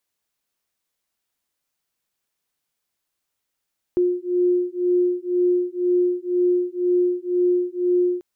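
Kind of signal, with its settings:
two tones that beat 356 Hz, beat 2 Hz, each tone −20.5 dBFS 4.24 s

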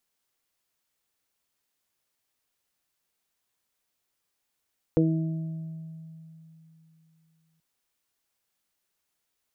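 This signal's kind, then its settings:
harmonic partials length 2.63 s, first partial 161 Hz, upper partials 2.5/2.5/−17.5 dB, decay 3.31 s, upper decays 1.09/0.21/1.95 s, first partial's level −21.5 dB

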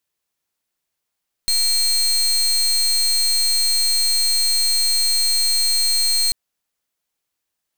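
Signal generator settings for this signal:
pulse wave 4,220 Hz, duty 29% −17.5 dBFS 4.84 s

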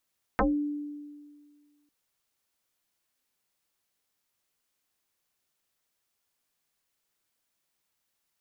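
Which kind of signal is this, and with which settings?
two-operator FM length 1.50 s, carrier 293 Hz, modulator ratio 0.86, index 7.1, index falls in 0.20 s exponential, decay 1.83 s, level −19.5 dB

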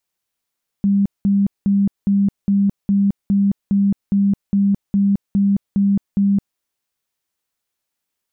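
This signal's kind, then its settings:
tone bursts 199 Hz, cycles 43, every 0.41 s, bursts 14, −12 dBFS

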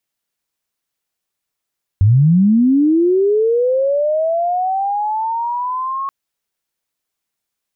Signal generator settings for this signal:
glide linear 92 Hz → 1,100 Hz −7 dBFS → −19 dBFS 4.08 s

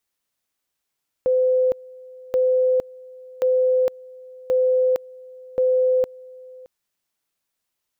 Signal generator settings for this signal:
tone at two levels in turn 511 Hz −15 dBFS, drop 23.5 dB, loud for 0.46 s, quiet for 0.62 s, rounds 5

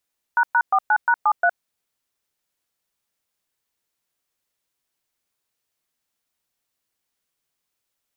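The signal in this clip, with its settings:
touch tones "##49#73", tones 63 ms, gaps 114 ms, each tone −16.5 dBFS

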